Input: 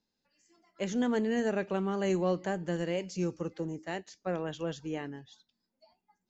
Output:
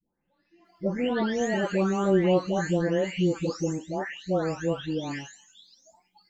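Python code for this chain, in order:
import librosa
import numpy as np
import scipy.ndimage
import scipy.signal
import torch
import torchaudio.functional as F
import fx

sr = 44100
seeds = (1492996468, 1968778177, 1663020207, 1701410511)

y = fx.spec_delay(x, sr, highs='late', ms=651)
y = y * librosa.db_to_amplitude(8.0)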